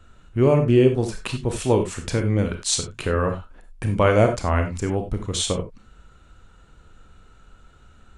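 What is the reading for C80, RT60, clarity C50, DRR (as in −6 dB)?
14.0 dB, non-exponential decay, 8.5 dB, 5.0 dB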